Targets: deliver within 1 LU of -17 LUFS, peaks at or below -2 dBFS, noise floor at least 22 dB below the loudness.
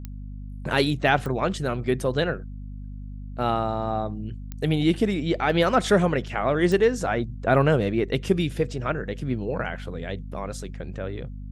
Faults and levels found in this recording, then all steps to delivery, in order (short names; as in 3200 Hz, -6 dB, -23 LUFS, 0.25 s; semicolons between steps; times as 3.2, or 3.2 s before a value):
clicks 4; hum 50 Hz; harmonics up to 250 Hz; hum level -33 dBFS; loudness -24.5 LUFS; peak -6.0 dBFS; loudness target -17.0 LUFS
-> de-click; notches 50/100/150/200/250 Hz; gain +7.5 dB; limiter -2 dBFS